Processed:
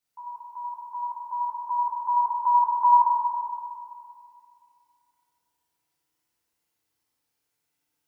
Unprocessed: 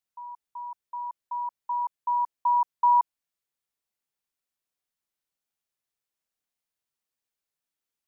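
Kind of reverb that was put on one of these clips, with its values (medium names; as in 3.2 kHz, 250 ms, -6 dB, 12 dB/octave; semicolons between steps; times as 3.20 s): FDN reverb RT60 2.4 s, low-frequency decay 1.25×, high-frequency decay 0.65×, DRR -9 dB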